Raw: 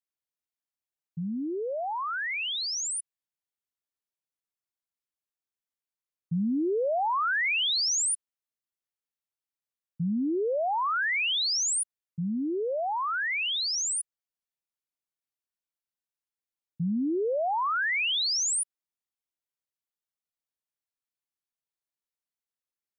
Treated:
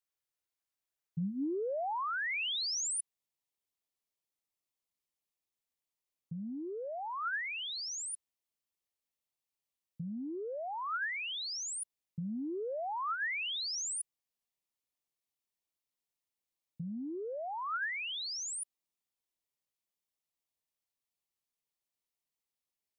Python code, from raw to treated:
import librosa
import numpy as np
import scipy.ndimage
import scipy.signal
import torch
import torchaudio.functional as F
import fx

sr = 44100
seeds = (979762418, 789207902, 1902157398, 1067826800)

y = fx.peak_eq(x, sr, hz=fx.steps((0.0, 230.0), (2.78, 1500.0)), db=-12.5, octaves=0.29)
y = fx.over_compress(y, sr, threshold_db=-34.0, ratio=-1.0)
y = y * 10.0 ** (-3.5 / 20.0)